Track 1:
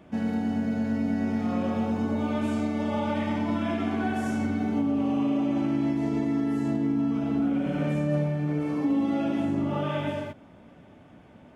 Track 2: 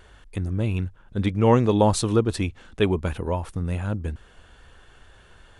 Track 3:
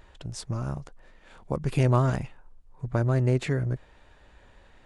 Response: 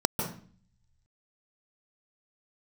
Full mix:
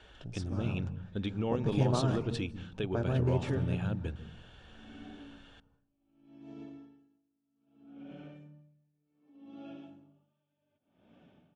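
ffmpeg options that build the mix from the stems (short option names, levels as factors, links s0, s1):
-filter_complex "[0:a]acompressor=threshold=0.00794:ratio=2,aeval=exprs='val(0)*pow(10,-38*(0.5-0.5*cos(2*PI*0.65*n/s))/20)':c=same,adelay=450,volume=0.237,asplit=2[s0][s1];[s1]volume=0.0944[s2];[1:a]acompressor=threshold=0.0631:ratio=4,volume=0.422,asplit=2[s3][s4];[s4]volume=0.0794[s5];[2:a]flanger=delay=3.4:depth=4.5:regen=-54:speed=2:shape=triangular,volume=0.562,asplit=2[s6][s7];[s7]volume=0.1[s8];[s0][s3]amix=inputs=2:normalize=0,equalizer=f=3100:w=1.3:g=8,alimiter=level_in=1.26:limit=0.0631:level=0:latency=1:release=186,volume=0.794,volume=1[s9];[3:a]atrim=start_sample=2205[s10];[s2][s5][s8]amix=inputs=3:normalize=0[s11];[s11][s10]afir=irnorm=-1:irlink=0[s12];[s6][s9][s12]amix=inputs=3:normalize=0,lowpass=6400,bandreject=f=2000:w=9.3"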